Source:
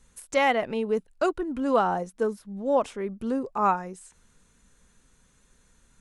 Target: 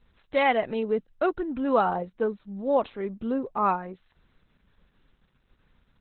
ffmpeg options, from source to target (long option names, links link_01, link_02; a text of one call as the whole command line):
ffmpeg -i in.wav -filter_complex "[0:a]asettb=1/sr,asplit=3[link_01][link_02][link_03];[link_01]atrim=end=2.904[link_04];[link_02]atrim=start=2.9:end=3.55,asetpts=PTS-STARTPTS,afade=type=in:duration=0.004:curve=qsin,afade=type=out:start_time=0.646:duration=0.004:curve=qsin,agate=range=-17dB:threshold=-51dB:ratio=16:detection=peak[link_05];[link_03]atrim=start=3.546[link_06];[link_04][link_05]acrossfade=duration=0.004:curve1=hsin:curve2=qsin[link_07];[link_07][link_06]acrossfade=duration=0.004:curve1=qsin:curve2=hsin" -ar 48000 -c:a libopus -b:a 8k out.opus